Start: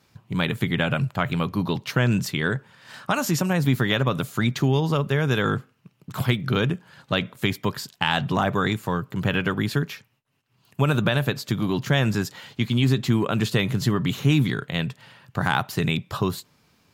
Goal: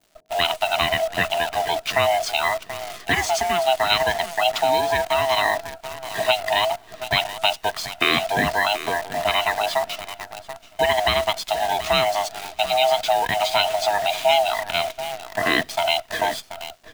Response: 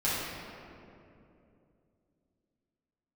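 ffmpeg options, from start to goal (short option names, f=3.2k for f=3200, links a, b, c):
-filter_complex "[0:a]afftfilt=real='real(if(lt(b,1008),b+24*(1-2*mod(floor(b/24),2)),b),0)':imag='imag(if(lt(b,1008),b+24*(1-2*mod(floor(b/24),2)),b),0)':win_size=2048:overlap=0.75,asplit=2[a][b];[b]adelay=732,lowpass=f=4.6k:p=1,volume=-12.5dB,asplit=2[c][d];[d]adelay=732,lowpass=f=4.6k:p=1,volume=0.17[e];[c][e]amix=inputs=2:normalize=0[f];[a][f]amix=inputs=2:normalize=0,aresample=22050,aresample=44100,highpass=80,equalizer=f=3k:t=o:w=1.5:g=7.5,acrossover=split=570[g][h];[h]acrusher=bits=6:dc=4:mix=0:aa=0.000001[i];[g][i]amix=inputs=2:normalize=0"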